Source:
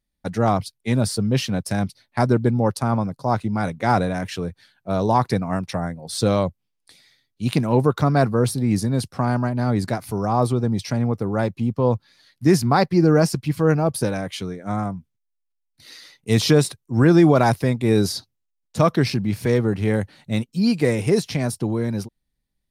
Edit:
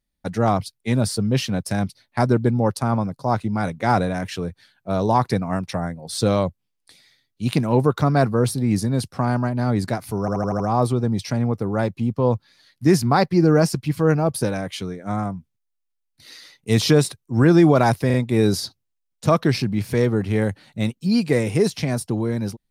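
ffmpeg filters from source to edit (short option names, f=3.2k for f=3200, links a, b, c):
-filter_complex "[0:a]asplit=8[a][b][c][d][e][f][g][h];[a]atrim=end=10.282[i];[b]atrim=start=10.198:end=10.282[j];[c]atrim=start=10.198:end=10.282[k];[d]atrim=start=10.198:end=10.282[l];[e]atrim=start=10.198:end=10.282[m];[f]atrim=start=10.198:end=17.702[n];[g]atrim=start=17.658:end=17.702[o];[h]atrim=start=17.658[p];[i][j]acrossfade=d=0.004:c1=hsin:c2=hsin[q];[q][k]acrossfade=d=0.004:c1=hsin:c2=hsin[r];[r][l]acrossfade=d=0.004:c1=hsin:c2=hsin[s];[s][m]acrossfade=d=0.004:c1=hsin:c2=hsin[t];[t][n]acrossfade=d=0.004:c1=hsin:c2=hsin[u];[u][o]acrossfade=d=0.004:c1=hsin:c2=hsin[v];[v][p]acrossfade=d=0.004:c1=hsin:c2=hsin"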